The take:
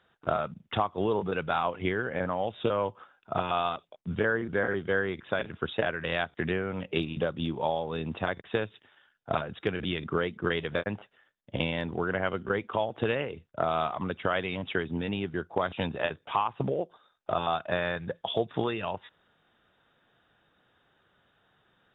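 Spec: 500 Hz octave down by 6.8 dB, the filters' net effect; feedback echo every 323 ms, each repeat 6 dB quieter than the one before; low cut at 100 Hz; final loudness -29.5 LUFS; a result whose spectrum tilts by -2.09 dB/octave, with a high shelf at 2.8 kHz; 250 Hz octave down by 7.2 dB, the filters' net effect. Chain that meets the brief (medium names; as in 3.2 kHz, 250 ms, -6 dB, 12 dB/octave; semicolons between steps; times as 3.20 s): high-pass 100 Hz; peaking EQ 250 Hz -8.5 dB; peaking EQ 500 Hz -6.5 dB; treble shelf 2.8 kHz +4 dB; feedback delay 323 ms, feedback 50%, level -6 dB; trim +3 dB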